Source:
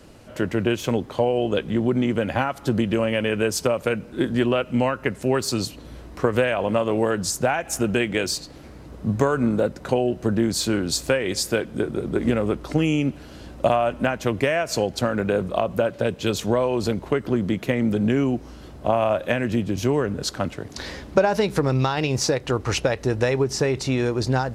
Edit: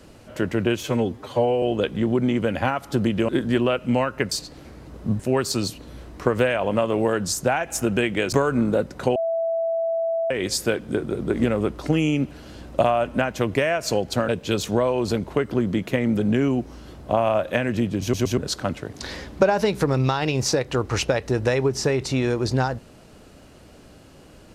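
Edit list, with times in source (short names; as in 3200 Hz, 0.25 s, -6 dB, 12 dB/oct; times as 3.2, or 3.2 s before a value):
0.83–1.36 stretch 1.5×
3.02–4.14 cut
8.3–9.18 move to 5.17
10.01–11.16 bleep 661 Hz -20.5 dBFS
15.14–16.04 cut
19.77 stutter in place 0.12 s, 3 plays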